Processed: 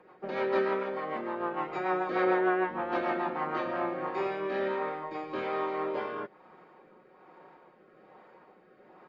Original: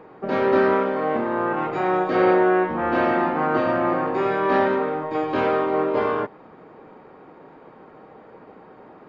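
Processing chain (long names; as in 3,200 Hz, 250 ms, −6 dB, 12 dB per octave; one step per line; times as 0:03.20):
low-shelf EQ 370 Hz −11.5 dB
comb filter 5.5 ms, depth 45%
rotating-speaker cabinet horn 6.7 Hz, later 1.2 Hz, at 0:03.29
level −5 dB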